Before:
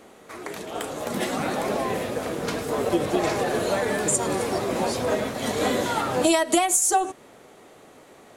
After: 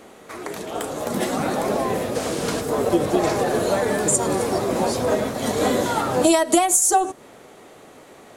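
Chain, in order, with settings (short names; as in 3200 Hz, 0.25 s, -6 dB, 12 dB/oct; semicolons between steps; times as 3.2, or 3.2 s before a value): dynamic EQ 2500 Hz, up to -5 dB, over -42 dBFS, Q 0.86; 2.14–2.6 band noise 700–9600 Hz -39 dBFS; gain +4 dB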